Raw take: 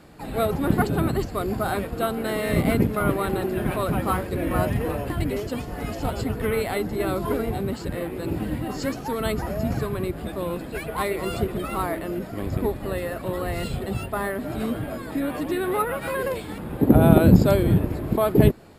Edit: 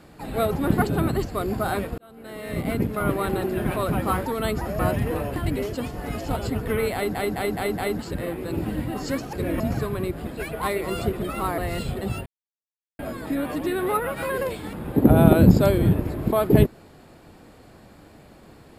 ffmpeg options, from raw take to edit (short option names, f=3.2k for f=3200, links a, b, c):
-filter_complex "[0:a]asplit=15[a][b][c][d][e][f][g][h][i][j][k][l][m][n][o];[a]atrim=end=1.98,asetpts=PTS-STARTPTS,afade=t=out:st=1.976:d=0.004:c=hsin[p];[b]atrim=start=1.98:end=4.262,asetpts=PTS-STARTPTS,afade=t=in:d=1.28[q];[c]atrim=start=9.068:end=9.602[r];[d]atrim=start=4.528:end=6.892[s];[e]atrim=start=6.678:end=6.892[t];[f]atrim=start=6.678:end=6.892[u];[g]atrim=start=6.678:end=6.892[v];[h]atrim=start=6.678:end=6.892[w];[i]atrim=start=7.728:end=9.072[x];[j]atrim=start=4.258:end=4.532[y];[k]atrim=start=9.598:end=10.272[z];[l]atrim=start=10.618:end=11.932[aa];[m]atrim=start=13.428:end=14.11,asetpts=PTS-STARTPTS,afade=t=out:st=0.678:d=0.004:c=hsin[ab];[n]atrim=start=14.11:end=14.84,asetpts=PTS-STARTPTS,volume=0[ac];[o]atrim=start=14.84,asetpts=PTS-STARTPTS,afade=t=in:d=0.004:c=hsin[ad];[p][q]concat=n=2:v=0:a=1[ae];[ae][r]acrossfade=d=0.004:c1=hsin:c2=hsin[af];[af][s]acrossfade=d=0.004:c1=hsin:c2=hsin[ag];[ag][t]acrossfade=d=0.004:c1=hsin:c2=hsin[ah];[ah][u]acrossfade=d=0.004:c1=hsin:c2=hsin[ai];[ai][v]acrossfade=d=0.004:c1=hsin:c2=hsin[aj];[aj][w]acrossfade=d=0.004:c1=hsin:c2=hsin[ak];[ak][x]acrossfade=d=0.004:c1=hsin:c2=hsin[al];[al][y]acrossfade=d=0.004:c1=hsin:c2=hsin[am];[am][z]acrossfade=d=0.004:c1=hsin:c2=hsin[an];[an][aa]acrossfade=d=0.004:c1=hsin:c2=hsin[ao];[ab][ac][ad]concat=n=3:v=0:a=1[ap];[ao][ap]acrossfade=d=0.004:c1=hsin:c2=hsin"